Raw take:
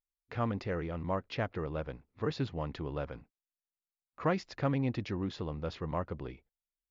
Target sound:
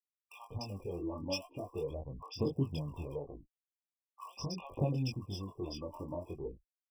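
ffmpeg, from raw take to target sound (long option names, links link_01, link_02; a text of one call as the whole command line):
ffmpeg -i in.wav -filter_complex "[0:a]afftfilt=real='re*gte(hypot(re,im),0.00355)':imag='im*gte(hypot(re,im),0.00355)':win_size=1024:overlap=0.75,anlmdn=0.000251,acompressor=threshold=-36dB:ratio=16,aphaser=in_gain=1:out_gain=1:delay=3.5:decay=0.66:speed=0.43:type=sinusoidal,aexciter=amount=7.6:drive=6.1:freq=4700,flanger=delay=20:depth=3:speed=1.9,acrossover=split=950[link_01][link_02];[link_01]adelay=190[link_03];[link_03][link_02]amix=inputs=2:normalize=0,afftfilt=real='re*eq(mod(floor(b*sr/1024/1200),2),0)':imag='im*eq(mod(floor(b*sr/1024/1200),2),0)':win_size=1024:overlap=0.75,volume=2.5dB" out.wav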